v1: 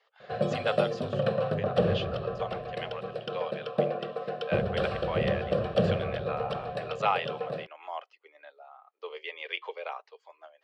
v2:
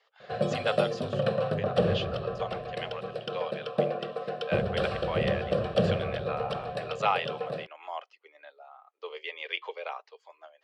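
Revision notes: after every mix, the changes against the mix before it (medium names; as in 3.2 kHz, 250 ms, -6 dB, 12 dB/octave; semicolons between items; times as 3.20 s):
master: add treble shelf 5 kHz +6.5 dB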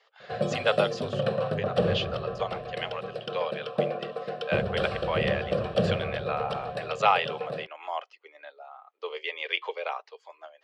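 speech +4.5 dB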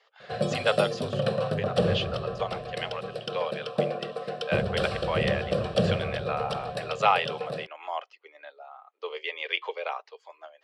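background: add tone controls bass +2 dB, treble +10 dB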